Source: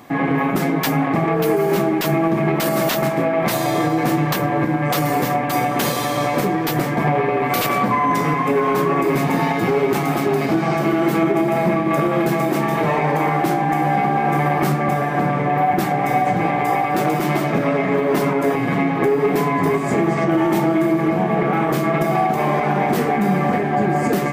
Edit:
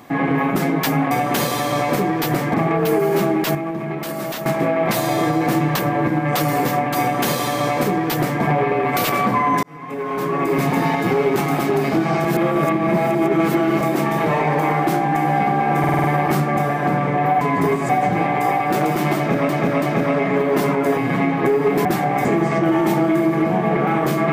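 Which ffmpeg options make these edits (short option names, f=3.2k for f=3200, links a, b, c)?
-filter_complex "[0:a]asplit=19[a][b][c][d][e][f][g][h][i][j][k][l][m][n][o][p][q][r][s];[a]atrim=end=1.112[t];[b]atrim=start=5.558:end=6.992[u];[c]atrim=start=1.108:end=2.122[v];[d]atrim=start=2.118:end=3.032,asetpts=PTS-STARTPTS,volume=-7.5dB[w];[e]atrim=start=3.028:end=8.2,asetpts=PTS-STARTPTS,afade=t=out:st=5.168:d=0.004:c=hsin[x];[f]atrim=start=8.2:end=10.822,asetpts=PTS-STARTPTS,afade=t=in:d=0.99[y];[g]atrim=start=10.818:end=12.382,asetpts=PTS-STARTPTS,areverse[z];[h]atrim=start=12.378:end=14.412[aa];[i]atrim=start=14.358:end=14.412[ab];[j]atrim=start=14.358:end=14.412[ac];[k]atrim=start=14.358:end=14.412[ad];[l]atrim=start=14.358:end=14.412[ae];[m]atrim=start=14.358:end=15.732[af];[n]atrim=start=19.428:end=19.912[ag];[o]atrim=start=16.128:end=17.732[ah];[p]atrim=start=17.398:end=17.732[ai];[q]atrim=start=17.398:end=19.432[aj];[r]atrim=start=15.728:end=16.132[ak];[s]atrim=start=19.908[al];[t][u]acrossfade=d=0.004:c1=hsin:c2=hsin[am];[am][v]acrossfade=d=0.004:c1=hsin:c2=hsin[an];[an][w]acrossfade=d=0.004:c1=hsin:c2=hsin[ao];[x][y]concat=n=2:v=0:a=1[ap];[ao][ap]acrossfade=d=0.004:c1=hsin:c2=hsin[aq];[aq][z]acrossfade=d=0.004:c1=hsin:c2=hsin[ar];[ar][aa]acrossfade=d=0.004:c1=hsin:c2=hsin[as];[as][ab]acrossfade=d=0.004:c1=hsin:c2=hsin[at];[at][ac]acrossfade=d=0.004:c1=hsin:c2=hsin[au];[au][ad]acrossfade=d=0.004:c1=hsin:c2=hsin[av];[av][ae]acrossfade=d=0.004:c1=hsin:c2=hsin[aw];[aw][af]acrossfade=d=0.004:c1=hsin:c2=hsin[ax];[ax][ag]acrossfade=d=0.004:c1=hsin:c2=hsin[ay];[ay][ah]acrossfade=d=0.004:c1=hsin:c2=hsin[az];[az][ai]acrossfade=d=0.004:c1=hsin:c2=hsin[ba];[ba][aj]acrossfade=d=0.004:c1=hsin:c2=hsin[bb];[bb][ak]acrossfade=d=0.004:c1=hsin:c2=hsin[bc];[bc][al]acrossfade=d=0.004:c1=hsin:c2=hsin"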